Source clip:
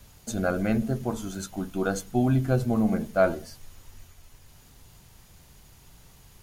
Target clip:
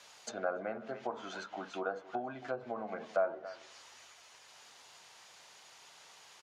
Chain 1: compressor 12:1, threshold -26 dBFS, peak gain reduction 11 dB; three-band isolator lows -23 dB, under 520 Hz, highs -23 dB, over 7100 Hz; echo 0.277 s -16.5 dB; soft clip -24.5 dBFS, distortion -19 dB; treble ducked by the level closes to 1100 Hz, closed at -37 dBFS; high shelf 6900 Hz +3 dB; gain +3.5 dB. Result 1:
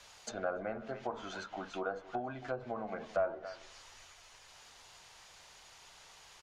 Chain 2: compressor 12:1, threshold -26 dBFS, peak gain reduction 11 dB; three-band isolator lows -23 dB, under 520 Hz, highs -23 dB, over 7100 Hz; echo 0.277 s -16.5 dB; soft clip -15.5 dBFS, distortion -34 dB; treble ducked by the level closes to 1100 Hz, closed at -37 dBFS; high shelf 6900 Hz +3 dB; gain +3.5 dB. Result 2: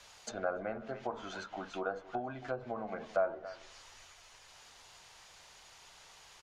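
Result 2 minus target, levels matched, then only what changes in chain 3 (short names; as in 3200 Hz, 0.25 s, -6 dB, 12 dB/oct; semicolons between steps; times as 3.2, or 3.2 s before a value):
125 Hz band +5.0 dB
add after treble ducked by the level: HPF 170 Hz 12 dB/oct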